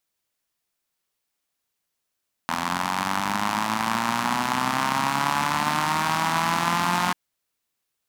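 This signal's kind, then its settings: four-cylinder engine model, changing speed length 4.64 s, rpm 2500, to 5400, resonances 220/940 Hz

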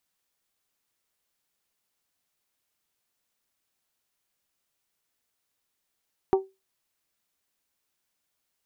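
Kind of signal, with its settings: glass hit bell, lowest mode 384 Hz, modes 4, decay 0.23 s, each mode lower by 7 dB, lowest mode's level -14 dB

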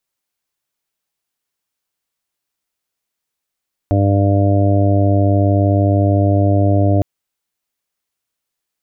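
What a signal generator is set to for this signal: steady additive tone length 3.11 s, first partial 99.5 Hz, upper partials -12/-5.5/-15/-15/-8/-11 dB, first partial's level -12 dB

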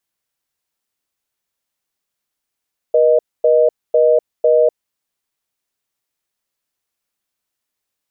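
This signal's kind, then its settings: call progress tone reorder tone, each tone -11.5 dBFS 1.91 s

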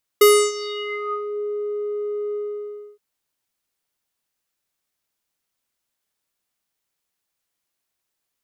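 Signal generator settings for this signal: synth note square G#4 12 dB/oct, low-pass 630 Hz, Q 5.4, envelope 4.5 oct, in 1.17 s, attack 6.8 ms, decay 0.30 s, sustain -20 dB, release 0.64 s, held 2.13 s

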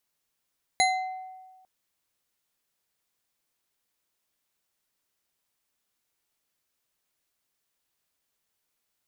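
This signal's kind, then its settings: glass hit bar, length 0.85 s, lowest mode 750 Hz, decay 1.42 s, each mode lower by 2 dB, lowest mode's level -20 dB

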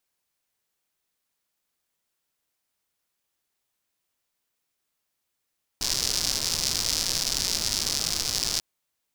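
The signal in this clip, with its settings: rain from filtered ticks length 2.79 s, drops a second 170, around 5100 Hz, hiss -9 dB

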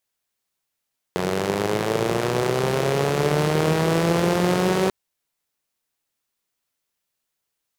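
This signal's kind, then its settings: four-cylinder engine model, changing speed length 3.74 s, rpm 2700, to 5700, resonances 170/390 Hz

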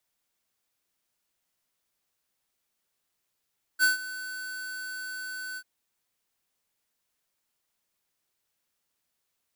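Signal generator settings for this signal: ADSR square 1510 Hz, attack 44 ms, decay 0.138 s, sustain -17 dB, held 1.78 s, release 59 ms -20 dBFS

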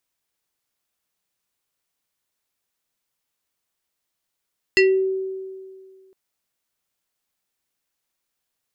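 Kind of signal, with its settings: FM tone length 1.36 s, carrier 381 Hz, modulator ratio 6.14, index 1.7, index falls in 0.31 s exponential, decay 1.99 s, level -10.5 dB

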